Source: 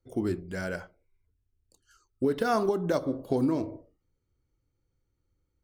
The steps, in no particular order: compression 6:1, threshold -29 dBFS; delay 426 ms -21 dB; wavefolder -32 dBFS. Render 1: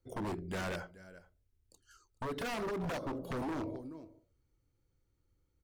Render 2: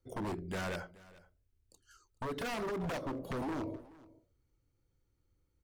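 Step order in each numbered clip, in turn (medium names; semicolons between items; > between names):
delay > compression > wavefolder; compression > wavefolder > delay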